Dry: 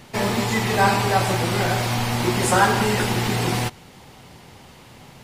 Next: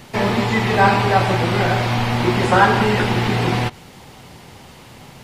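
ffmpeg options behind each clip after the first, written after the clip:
-filter_complex "[0:a]acrossover=split=4300[s0][s1];[s1]acompressor=threshold=0.00398:ratio=4:attack=1:release=60[s2];[s0][s2]amix=inputs=2:normalize=0,volume=1.58"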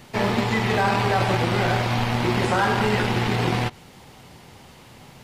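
-filter_complex "[0:a]acrossover=split=5600[s0][s1];[s0]alimiter=limit=0.335:level=0:latency=1:release=18[s2];[s2][s1]amix=inputs=2:normalize=0,aeval=exprs='0.376*(cos(1*acos(clip(val(0)/0.376,-1,1)))-cos(1*PI/2))+0.0473*(cos(3*acos(clip(val(0)/0.376,-1,1)))-cos(3*PI/2))':c=same,volume=0.891"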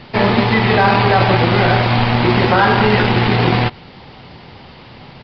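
-af "aresample=11025,aresample=44100,volume=2.66"

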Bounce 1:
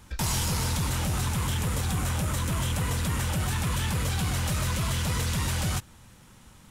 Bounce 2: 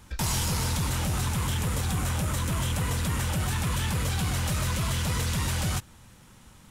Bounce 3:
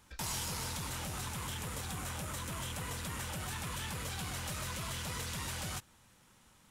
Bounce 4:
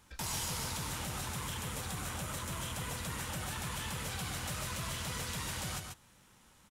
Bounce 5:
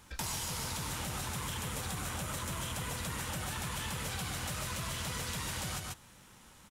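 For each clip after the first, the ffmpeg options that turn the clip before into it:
-af anull
-af "lowshelf=f=240:g=-8.5,volume=0.398"
-af "aecho=1:1:138:0.531"
-af "acompressor=threshold=0.01:ratio=6,volume=1.88"

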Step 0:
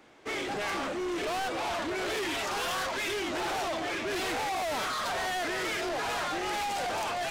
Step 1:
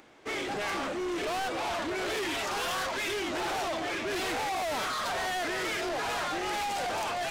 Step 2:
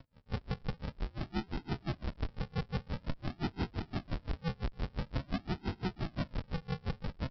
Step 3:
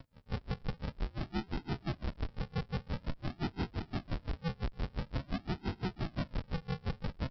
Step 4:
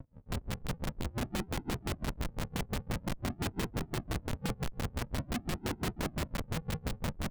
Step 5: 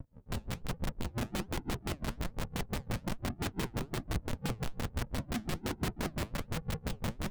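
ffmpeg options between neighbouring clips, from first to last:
-af "acompressor=mode=upward:threshold=0.00178:ratio=2.5"
-af "aresample=11025,acrusher=samples=27:mix=1:aa=0.000001:lfo=1:lforange=16.2:lforate=0.48,aresample=44100,aeval=exprs='val(0)*pow(10,-31*(0.5-0.5*cos(2*PI*5.8*n/s))/20)':c=same,volume=1.19"
-af "alimiter=level_in=2.24:limit=0.0631:level=0:latency=1:release=231,volume=0.447,volume=1.41"
-af "adynamicsmooth=sensitivity=1:basefreq=760,aeval=exprs='(mod(53.1*val(0)+1,2)-1)/53.1':c=same,volume=2"
-af "flanger=delay=0.1:depth=9.6:regen=75:speed=1.2:shape=triangular,volume=1.58"

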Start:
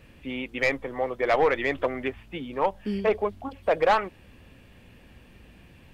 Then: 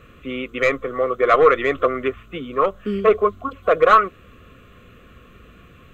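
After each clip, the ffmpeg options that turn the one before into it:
-af "superequalizer=7b=1.78:9b=0.282:10b=3.98:14b=0.316:16b=0.316,volume=1.58"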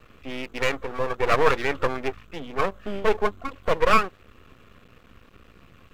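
-af "aeval=exprs='max(val(0),0)':c=same,volume=0.841"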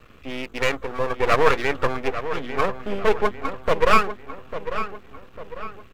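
-filter_complex "[0:a]asplit=2[s0][s1];[s1]adelay=848,lowpass=f=3400:p=1,volume=0.299,asplit=2[s2][s3];[s3]adelay=848,lowpass=f=3400:p=1,volume=0.45,asplit=2[s4][s5];[s5]adelay=848,lowpass=f=3400:p=1,volume=0.45,asplit=2[s6][s7];[s7]adelay=848,lowpass=f=3400:p=1,volume=0.45,asplit=2[s8][s9];[s9]adelay=848,lowpass=f=3400:p=1,volume=0.45[s10];[s0][s2][s4][s6][s8][s10]amix=inputs=6:normalize=0,volume=1.26"

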